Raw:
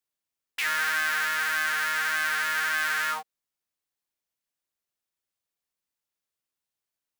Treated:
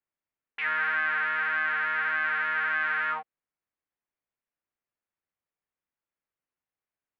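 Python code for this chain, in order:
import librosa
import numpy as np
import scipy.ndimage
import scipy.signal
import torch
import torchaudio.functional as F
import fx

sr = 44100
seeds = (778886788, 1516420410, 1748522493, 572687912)

y = scipy.signal.sosfilt(scipy.signal.butter(4, 2400.0, 'lowpass', fs=sr, output='sos'), x)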